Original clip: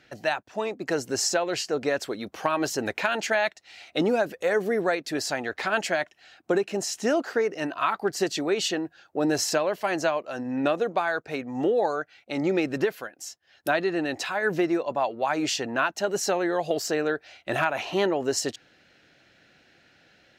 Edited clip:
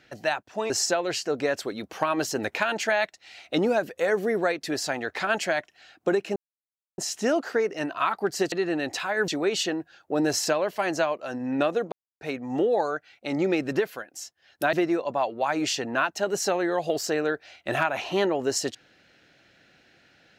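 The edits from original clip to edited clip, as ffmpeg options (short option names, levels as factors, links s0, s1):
-filter_complex "[0:a]asplit=8[s0][s1][s2][s3][s4][s5][s6][s7];[s0]atrim=end=0.702[s8];[s1]atrim=start=1.128:end=6.79,asetpts=PTS-STARTPTS,afade=t=out:st=5.658:d=0.004:c=hsin,apad=pad_dur=0.62[s9];[s2]atrim=start=6.79:end=8.332,asetpts=PTS-STARTPTS,afade=t=in:d=0.004:c=hsin[s10];[s3]atrim=start=13.778:end=14.542[s11];[s4]atrim=start=8.328:end=10.97,asetpts=PTS-STARTPTS,afade=t=out:st=2.638:d=0.004:c=hsin[s12];[s5]atrim=start=10.97:end=11.26,asetpts=PTS-STARTPTS,volume=0[s13];[s6]atrim=start=11.26:end=13.782,asetpts=PTS-STARTPTS,afade=t=in:d=0.004:c=hsin[s14];[s7]atrim=start=14.538[s15];[s9][s10]concat=n=2:v=0:a=1[s16];[s8][s16]acrossfade=d=0.004:c1=hsin:c2=hsin[s17];[s17][s11]acrossfade=d=0.004:c1=hsin:c2=hsin[s18];[s12][s13][s14]concat=n=3:v=0:a=1[s19];[s18][s19]acrossfade=d=0.004:c1=hsin:c2=hsin[s20];[s20][s15]acrossfade=d=0.004:c1=hsin:c2=hsin"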